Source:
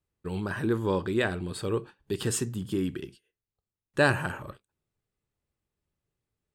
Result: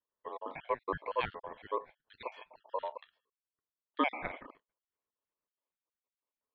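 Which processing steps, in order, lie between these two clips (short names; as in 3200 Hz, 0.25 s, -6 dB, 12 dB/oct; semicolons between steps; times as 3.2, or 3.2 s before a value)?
random spectral dropouts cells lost 53%; mistuned SSB -110 Hz 230–2900 Hz; ring modulator 760 Hz; gain -2 dB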